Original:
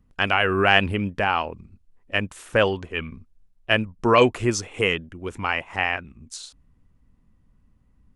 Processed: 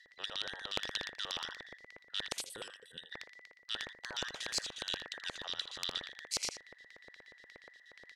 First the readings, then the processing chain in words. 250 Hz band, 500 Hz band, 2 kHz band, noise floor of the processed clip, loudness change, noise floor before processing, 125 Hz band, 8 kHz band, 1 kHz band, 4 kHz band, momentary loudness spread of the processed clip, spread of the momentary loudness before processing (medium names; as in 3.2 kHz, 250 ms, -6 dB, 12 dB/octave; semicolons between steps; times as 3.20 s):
-28.0 dB, -27.0 dB, -19.5 dB, -64 dBFS, -17.0 dB, -61 dBFS, -30.0 dB, -5.0 dB, -24.0 dB, -8.0 dB, 19 LU, 19 LU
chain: every band turned upside down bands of 2 kHz; frequency weighting D; time-frequency box 2.41–3.12 s, 540–7700 Hz -26 dB; amplifier tone stack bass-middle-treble 10-0-10; reverse; compression 10:1, threshold -26 dBFS, peak gain reduction 20 dB; reverse; vibrato 7.7 Hz 15 cents; LFO band-pass square 8.4 Hz 510–4600 Hz; delay 80 ms -19 dB; spectrum-flattening compressor 2:1; trim +3 dB